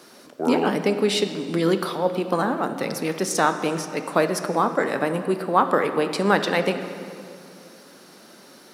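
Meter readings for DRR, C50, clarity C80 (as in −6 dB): 8.0 dB, 9.0 dB, 10.0 dB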